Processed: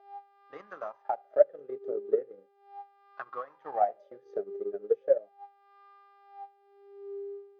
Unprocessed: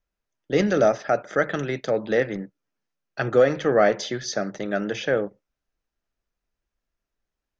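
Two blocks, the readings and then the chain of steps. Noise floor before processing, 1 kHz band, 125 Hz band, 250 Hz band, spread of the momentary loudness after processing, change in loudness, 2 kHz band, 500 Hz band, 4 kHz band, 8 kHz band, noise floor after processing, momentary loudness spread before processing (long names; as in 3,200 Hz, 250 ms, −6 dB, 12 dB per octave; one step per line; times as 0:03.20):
below −85 dBFS, −5.0 dB, below −30 dB, −22.0 dB, 23 LU, −8.5 dB, −22.5 dB, −7.5 dB, below −30 dB, can't be measured, −64 dBFS, 10 LU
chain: hum with harmonics 400 Hz, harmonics 13, −37 dBFS −5 dB per octave
LFO wah 0.38 Hz 400–1,100 Hz, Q 18
transient designer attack +9 dB, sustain −7 dB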